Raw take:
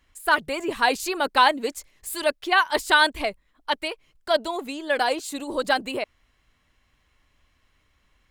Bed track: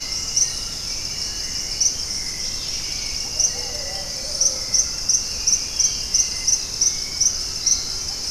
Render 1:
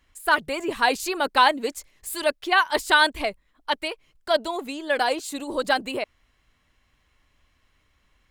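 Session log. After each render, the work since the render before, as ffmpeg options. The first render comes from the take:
-af anull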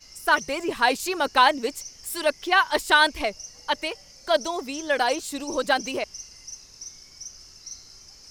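-filter_complex "[1:a]volume=0.0841[s0];[0:a][s0]amix=inputs=2:normalize=0"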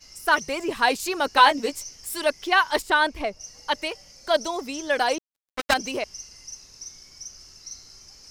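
-filter_complex "[0:a]asettb=1/sr,asplit=3[s0][s1][s2];[s0]atrim=end=1.354[s3];[s1]atrim=start=1.35:end=1.95,asetpts=PTS-STARTPTS,afade=t=in:d=0.004:c=qsin,afade=t=out:st=0.596:d=0.004:c=qsin,asplit=2[s4][s5];[s5]adelay=14,volume=0.562[s6];[s4][s6]amix=inputs=2:normalize=0,atrim=end_sample=26460[s7];[s2]atrim=start=1.946[s8];[s3][s7]acrossfade=d=0.004:c1=hsin:c2=qsin[s9];[s9][s8]acrossfade=d=0.004:c1=qsin:c2=hsin,asettb=1/sr,asplit=3[s10][s11][s12];[s10]atrim=end=2.824[s13];[s11]atrim=start=2.82:end=3.41,asetpts=PTS-STARTPTS,afade=t=in:d=0.004:c=qsin,afade=t=out:st=0.586:d=0.004:c=qsin,highshelf=f=2300:g=-9.5[s14];[s12]atrim=start=3.406[s15];[s13][s14]acrossfade=d=0.004:c1=hsin:c2=qsin[s16];[s16][s15]acrossfade=d=0.004:c1=qsin:c2=hsin,asettb=1/sr,asplit=3[s17][s18][s19];[s17]atrim=end=5.184[s20];[s18]atrim=start=5.18:end=5.74,asetpts=PTS-STARTPTS,afade=t=in:d=0.004:c=qsin,afade=t=out:st=0.556:d=0.004:c=qsin,acrusher=bits=2:mix=0:aa=0.5[s21];[s19]atrim=start=5.736[s22];[s20][s21]acrossfade=d=0.004:c1=hsin:c2=qsin[s23];[s23][s22]acrossfade=d=0.004:c1=qsin:c2=hsin"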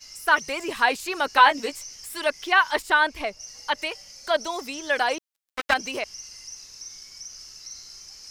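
-filter_complex "[0:a]acrossover=split=2800[s0][s1];[s1]acompressor=threshold=0.01:ratio=4:attack=1:release=60[s2];[s0][s2]amix=inputs=2:normalize=0,tiltshelf=f=970:g=-5"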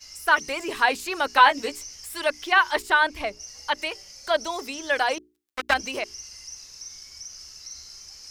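-af "equalizer=f=68:t=o:w=0.24:g=12.5,bandreject=f=60:t=h:w=6,bandreject=f=120:t=h:w=6,bandreject=f=180:t=h:w=6,bandreject=f=240:t=h:w=6,bandreject=f=300:t=h:w=6,bandreject=f=360:t=h:w=6,bandreject=f=420:t=h:w=6"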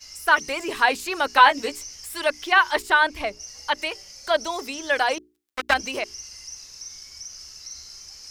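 -af "volume=1.19"

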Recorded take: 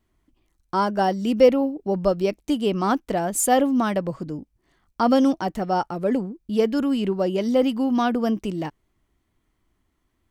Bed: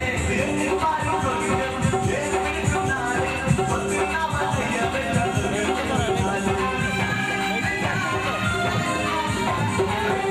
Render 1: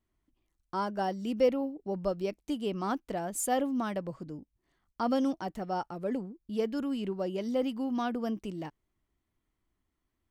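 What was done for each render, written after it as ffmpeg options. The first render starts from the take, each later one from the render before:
-af "volume=0.299"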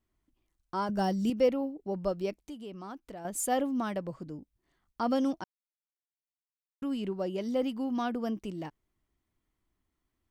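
-filter_complex "[0:a]asettb=1/sr,asplit=3[s0][s1][s2];[s0]atrim=end=0.894[s3];[s1]atrim=start=0.89:end=1.3,asetpts=PTS-STARTPTS,afade=t=in:d=0.004:c=qsin,afade=t=out:st=0.406:d=0.004:c=qsin,bass=f=250:g=11,treble=f=4000:g=8[s4];[s2]atrim=start=1.296[s5];[s3][s4]acrossfade=d=0.004:c1=hsin:c2=qsin[s6];[s6][s5]acrossfade=d=0.004:c1=qsin:c2=hsin,asettb=1/sr,asplit=3[s7][s8][s9];[s7]atrim=end=2.354[s10];[s8]atrim=start=2.35:end=3.25,asetpts=PTS-STARTPTS,afade=t=in:d=0.004:c=qsin,afade=t=out:st=0.896:d=0.004:c=qsin,acompressor=threshold=0.00447:ratio=2:attack=3.2:release=140:knee=1:detection=peak[s11];[s9]atrim=start=3.246[s12];[s10][s11]acrossfade=d=0.004:c1=hsin:c2=qsin[s13];[s13][s12]acrossfade=d=0.004:c1=qsin:c2=hsin,asplit=3[s14][s15][s16];[s14]atrim=end=5.44,asetpts=PTS-STARTPTS,afade=t=out:st=5.436:d=0.004:c=hsin[s17];[s15]atrim=start=5.44:end=6.82,asetpts=PTS-STARTPTS,volume=0[s18];[s16]atrim=start=6.82,asetpts=PTS-STARTPTS,afade=t=in:d=0.004:c=hsin[s19];[s17][s18][s19]concat=n=3:v=0:a=1"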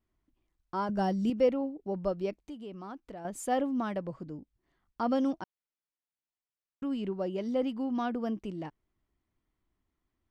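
-af "aemphasis=mode=reproduction:type=50kf"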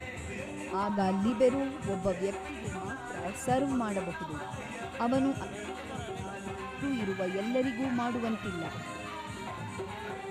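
-filter_complex "[1:a]volume=0.15[s0];[0:a][s0]amix=inputs=2:normalize=0"

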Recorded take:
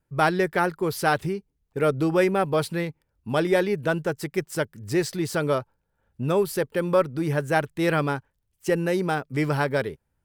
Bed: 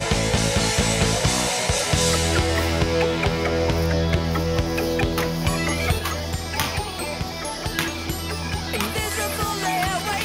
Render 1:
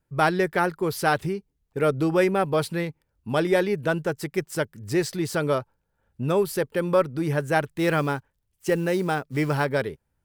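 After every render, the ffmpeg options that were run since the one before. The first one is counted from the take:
-filter_complex "[0:a]asettb=1/sr,asplit=3[s0][s1][s2];[s0]atrim=end=7.684[s3];[s1]atrim=start=7.68:end=9.65,asetpts=PTS-STARTPTS,afade=t=in:d=0.004:c=qsin,afade=t=out:st=1.966:d=0.004:c=qsin,acrusher=bits=7:mode=log:mix=0:aa=0.000001[s4];[s2]atrim=start=9.646[s5];[s3][s4]acrossfade=d=0.004:c1=hsin:c2=qsin[s6];[s6][s5]acrossfade=d=0.004:c1=qsin:c2=hsin"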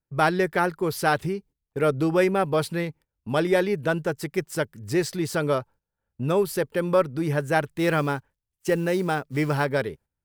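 -af "agate=range=0.251:threshold=0.00398:ratio=16:detection=peak"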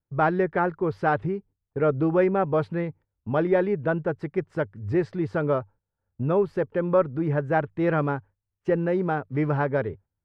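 -af "lowpass=1500,equalizer=f=98:t=o:w=0.26:g=10"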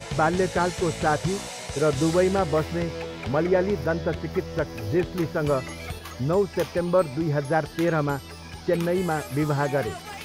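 -filter_complex "[1:a]volume=0.224[s0];[0:a][s0]amix=inputs=2:normalize=0"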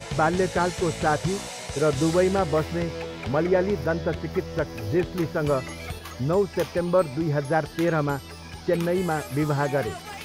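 -af anull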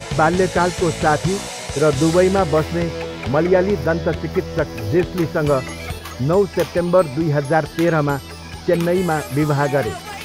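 -af "volume=2.11"

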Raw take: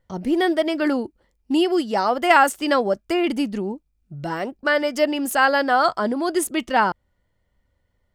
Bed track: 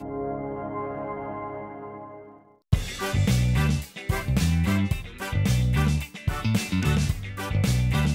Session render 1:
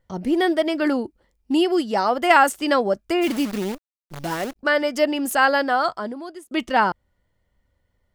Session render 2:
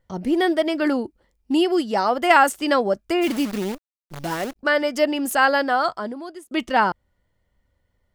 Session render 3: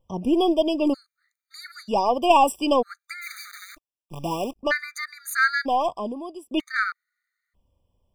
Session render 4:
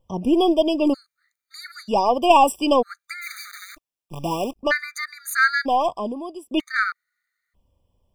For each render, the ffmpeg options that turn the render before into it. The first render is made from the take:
-filter_complex "[0:a]asplit=3[s0][s1][s2];[s0]afade=t=out:st=3.21:d=0.02[s3];[s1]acrusher=bits=6:dc=4:mix=0:aa=0.000001,afade=t=in:st=3.21:d=0.02,afade=t=out:st=4.55:d=0.02[s4];[s2]afade=t=in:st=4.55:d=0.02[s5];[s3][s4][s5]amix=inputs=3:normalize=0,asplit=2[s6][s7];[s6]atrim=end=6.51,asetpts=PTS-STARTPTS,afade=t=out:st=5.52:d=0.99[s8];[s7]atrim=start=6.51,asetpts=PTS-STARTPTS,afade=t=in:d=0.004:c=hsin[s9];[s8][s9]concat=n=2:v=0:a=1"
-af anull
-af "aeval=exprs='0.668*(cos(1*acos(clip(val(0)/0.668,-1,1)))-cos(1*PI/2))+0.0266*(cos(6*acos(clip(val(0)/0.668,-1,1)))-cos(6*PI/2))':c=same,afftfilt=real='re*gt(sin(2*PI*0.53*pts/sr)*(1-2*mod(floor(b*sr/1024/1200),2)),0)':imag='im*gt(sin(2*PI*0.53*pts/sr)*(1-2*mod(floor(b*sr/1024/1200),2)),0)':win_size=1024:overlap=0.75"
-af "volume=1.33"

